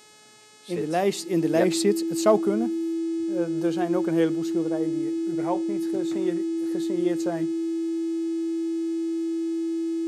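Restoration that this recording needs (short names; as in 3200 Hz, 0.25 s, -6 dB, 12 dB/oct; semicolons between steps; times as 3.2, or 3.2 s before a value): de-hum 425.3 Hz, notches 21; notch 330 Hz, Q 30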